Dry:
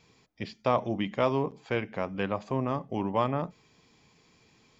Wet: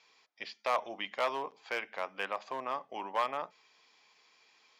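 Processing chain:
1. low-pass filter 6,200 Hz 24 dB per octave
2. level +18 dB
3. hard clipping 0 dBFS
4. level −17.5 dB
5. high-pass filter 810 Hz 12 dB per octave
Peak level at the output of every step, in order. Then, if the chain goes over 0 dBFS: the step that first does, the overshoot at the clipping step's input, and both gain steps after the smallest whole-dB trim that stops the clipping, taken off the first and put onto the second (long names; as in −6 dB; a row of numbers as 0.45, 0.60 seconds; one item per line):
−11.5, +6.5, 0.0, −17.5, −18.0 dBFS
step 2, 6.5 dB
step 2 +11 dB, step 4 −10.5 dB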